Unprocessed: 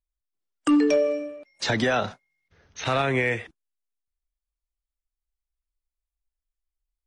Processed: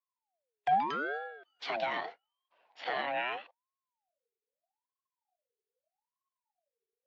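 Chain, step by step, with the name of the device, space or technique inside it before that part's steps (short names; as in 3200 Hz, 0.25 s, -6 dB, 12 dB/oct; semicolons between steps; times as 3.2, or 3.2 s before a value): voice changer toy (ring modulator with a swept carrier 750 Hz, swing 45%, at 0.8 Hz; speaker cabinet 450–4100 Hz, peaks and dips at 480 Hz +4 dB, 720 Hz +8 dB, 1200 Hz -7 dB, 1900 Hz +3 dB); gain -7.5 dB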